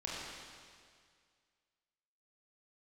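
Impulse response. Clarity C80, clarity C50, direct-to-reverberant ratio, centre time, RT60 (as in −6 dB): −0.5 dB, −2.5 dB, −6.0 dB, 136 ms, 2.0 s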